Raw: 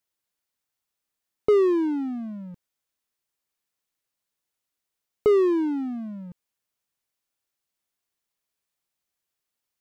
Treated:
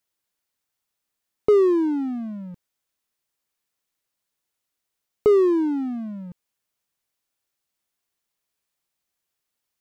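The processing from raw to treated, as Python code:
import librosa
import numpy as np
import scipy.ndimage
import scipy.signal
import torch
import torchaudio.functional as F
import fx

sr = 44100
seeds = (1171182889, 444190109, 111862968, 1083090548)

y = fx.dynamic_eq(x, sr, hz=2500.0, q=1.1, threshold_db=-46.0, ratio=4.0, max_db=-6)
y = y * 10.0 ** (2.5 / 20.0)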